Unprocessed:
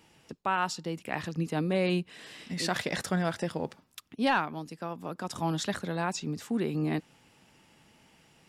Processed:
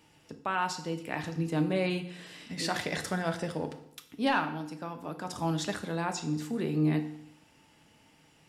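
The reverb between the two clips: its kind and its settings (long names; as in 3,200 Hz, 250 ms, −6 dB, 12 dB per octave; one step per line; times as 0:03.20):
feedback delay network reverb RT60 0.73 s, low-frequency decay 1.1×, high-frequency decay 0.9×, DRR 6 dB
level −2 dB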